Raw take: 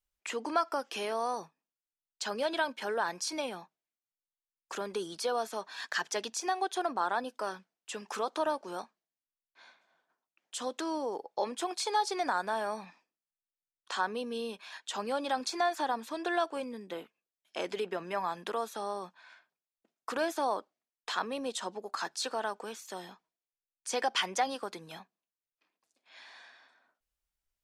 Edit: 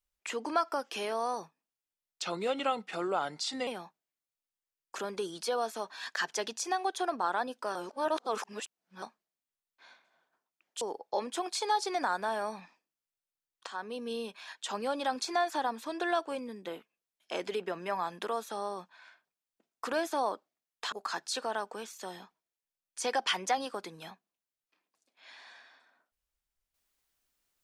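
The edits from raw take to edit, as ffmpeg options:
-filter_complex "[0:a]asplit=8[s0][s1][s2][s3][s4][s5][s6][s7];[s0]atrim=end=2.224[s8];[s1]atrim=start=2.22:end=3.44,asetpts=PTS-STARTPTS,asetrate=37044,aresample=44100[s9];[s2]atrim=start=3.436:end=7.522[s10];[s3]atrim=start=7.518:end=8.792,asetpts=PTS-STARTPTS,areverse[s11];[s4]atrim=start=8.788:end=10.582[s12];[s5]atrim=start=11.058:end=13.92,asetpts=PTS-STARTPTS,afade=t=out:st=2.858:d=0.004:c=hsin:silence=0.223872[s13];[s6]atrim=start=13.92:end=21.172,asetpts=PTS-STARTPTS,afade=t=in:d=0.44:silence=0.223872[s14];[s7]atrim=start=21.808[s15];[s8][s9]acrossfade=d=0.004:c1=hsin:c2=hsin[s16];[s16][s10]acrossfade=d=0.004:c1=hsin:c2=hsin[s17];[s17][s11]acrossfade=d=0.004:c1=hsin:c2=hsin[s18];[s18][s12]acrossfade=d=0.004:c1=hsin:c2=hsin[s19];[s13][s14]concat=n=2:v=0:a=1[s20];[s19][s20]acrossfade=d=0.004:c1=hsin:c2=hsin[s21];[s21][s15]acrossfade=d=0.004:c1=hsin:c2=hsin"

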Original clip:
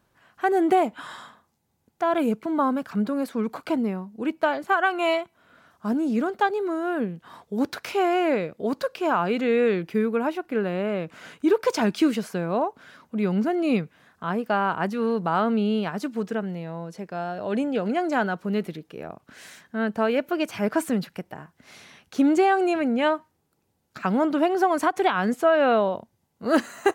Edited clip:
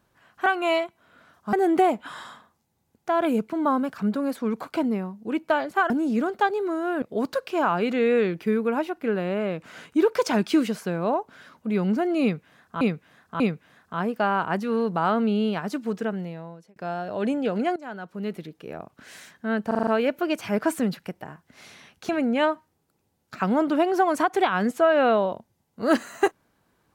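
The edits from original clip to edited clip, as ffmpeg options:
-filter_complex "[0:a]asplit=15[s0][s1][s2][s3][s4][s5][s6][s7][s8][s9][s10][s11][s12][s13][s14];[s0]atrim=end=0.462[s15];[s1]atrim=start=4.828:end=5.902[s16];[s2]atrim=start=0.458:end=4.832[s17];[s3]atrim=start=5.898:end=7.022[s18];[s4]atrim=start=8.498:end=14.292[s19];[s5]atrim=start=13.698:end=14.292[s20];[s6]atrim=start=13.698:end=17.06,asetpts=PTS-STARTPTS,afade=t=out:st=2.812:d=0.55[s21];[s7]atrim=start=17.06:end=18.06,asetpts=PTS-STARTPTS,afade=t=in:d=0.004:c=hsin,afade=t=out:st=0.996:d=0.004:c=hsin:silence=0.0944061[s22];[s8]atrim=start=18.06:end=20.012,asetpts=PTS-STARTPTS,afade=t=in:d=0.96:silence=0.0944061[s23];[s9]atrim=start=19.968:end=20.012[s24];[s10]atrim=start=19.968:end=20.012[s25];[s11]atrim=start=19.968:end=20.012[s26];[s12]atrim=start=19.968:end=20.012[s27];[s13]atrim=start=19.968:end=22.192[s28];[s14]atrim=start=22.718[s29];[s15][s16]acrossfade=d=0.004:c1=hsin:c2=hsin[s30];[s30][s17]acrossfade=d=0.004:c1=hsin:c2=hsin[s31];[s31][s18]acrossfade=d=0.004:c1=hsin:c2=hsin[s32];[s32][s19]acrossfade=d=0.004:c1=hsin:c2=hsin[s33];[s33][s20]acrossfade=d=0.004:c1=hsin:c2=hsin[s34];[s21][s22][s23]concat=n=3:v=0:a=1[s35];[s34][s35]acrossfade=d=0.004:c1=hsin:c2=hsin[s36];[s36][s24]acrossfade=d=0.004:c1=hsin:c2=hsin[s37];[s37][s25]acrossfade=d=0.004:c1=hsin:c2=hsin[s38];[s38][s26]acrossfade=d=0.004:c1=hsin:c2=hsin[s39];[s39][s27]acrossfade=d=0.004:c1=hsin:c2=hsin[s40];[s40][s28]acrossfade=d=0.004:c1=hsin:c2=hsin[s41];[s41][s29]acrossfade=d=0.004:c1=hsin:c2=hsin"

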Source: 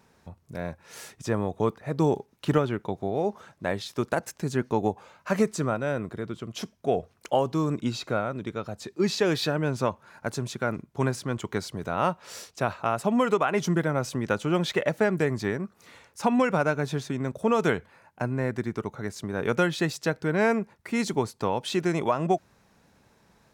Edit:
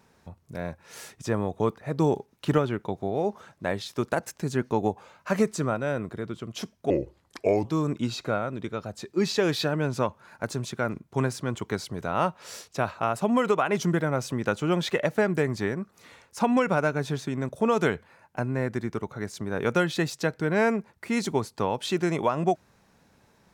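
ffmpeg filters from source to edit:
-filter_complex "[0:a]asplit=3[s0][s1][s2];[s0]atrim=end=6.904[s3];[s1]atrim=start=6.9:end=7.48,asetpts=PTS-STARTPTS,asetrate=33957,aresample=44100,atrim=end_sample=33218,asetpts=PTS-STARTPTS[s4];[s2]atrim=start=7.476[s5];[s3][s4]acrossfade=d=0.004:c1=hsin:c2=hsin[s6];[s6][s5]acrossfade=d=0.004:c1=hsin:c2=hsin"

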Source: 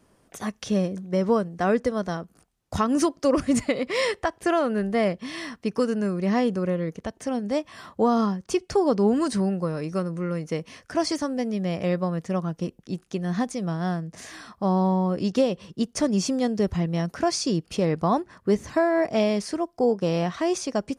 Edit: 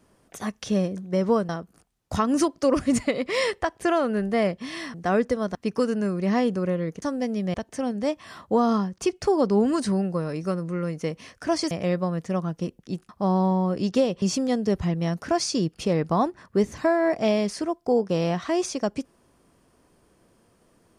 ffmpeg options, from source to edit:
-filter_complex "[0:a]asplit=9[s0][s1][s2][s3][s4][s5][s6][s7][s8];[s0]atrim=end=1.492[s9];[s1]atrim=start=2.098:end=5.552[s10];[s2]atrim=start=1.488:end=2.102[s11];[s3]atrim=start=5.548:end=7.022[s12];[s4]atrim=start=11.188:end=11.712[s13];[s5]atrim=start=7.018:end=11.192[s14];[s6]atrim=start=11.708:end=13.092[s15];[s7]atrim=start=14.498:end=15.632[s16];[s8]atrim=start=16.138[s17];[s9][s10]acrossfade=d=0.004:c1=hsin:c2=hsin[s18];[s18][s11]acrossfade=d=0.004:c1=hsin:c2=hsin[s19];[s19][s12]acrossfade=d=0.004:c1=hsin:c2=hsin[s20];[s20][s13]acrossfade=d=0.004:c1=hsin:c2=hsin[s21];[s21][s14]acrossfade=d=0.004:c1=hsin:c2=hsin[s22];[s22][s15]acrossfade=d=0.004:c1=hsin:c2=hsin[s23];[s23][s16]acrossfade=d=0.004:c1=hsin:c2=hsin[s24];[s24][s17]acrossfade=d=0.004:c1=hsin:c2=hsin"

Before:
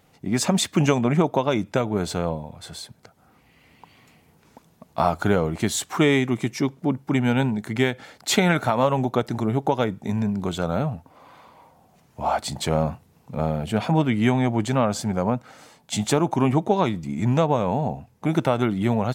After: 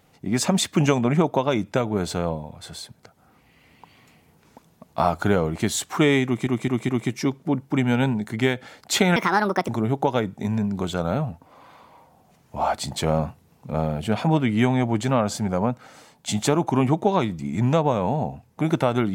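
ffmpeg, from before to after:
-filter_complex "[0:a]asplit=6[s0][s1][s2][s3][s4][s5];[s0]atrim=end=6.472[s6];[s1]atrim=start=6.258:end=6.472[s7];[s2]atrim=start=6.258:end=6.472[s8];[s3]atrim=start=6.258:end=8.534[s9];[s4]atrim=start=8.53:end=9.33,asetpts=PTS-STARTPTS,asetrate=67032,aresample=44100[s10];[s5]atrim=start=9.326[s11];[s6][s7]acrossfade=d=0.004:c1=hsin:c2=hsin[s12];[s12][s8]acrossfade=d=0.004:c1=hsin:c2=hsin[s13];[s13][s9]acrossfade=d=0.004:c1=hsin:c2=hsin[s14];[s14][s10]acrossfade=d=0.004:c1=hsin:c2=hsin[s15];[s15][s11]acrossfade=d=0.004:c1=hsin:c2=hsin"

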